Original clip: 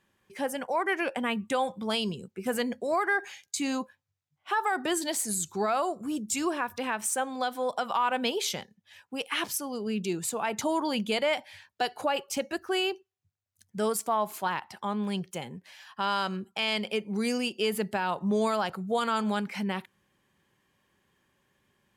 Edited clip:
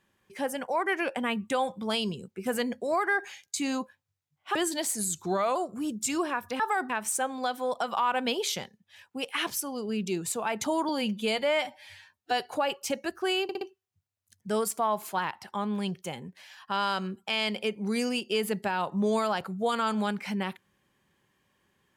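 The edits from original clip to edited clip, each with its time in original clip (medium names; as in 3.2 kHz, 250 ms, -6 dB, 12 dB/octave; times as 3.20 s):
4.55–4.85 s: move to 6.87 s
5.56–5.83 s: speed 91%
10.86–11.87 s: stretch 1.5×
12.90 s: stutter 0.06 s, 4 plays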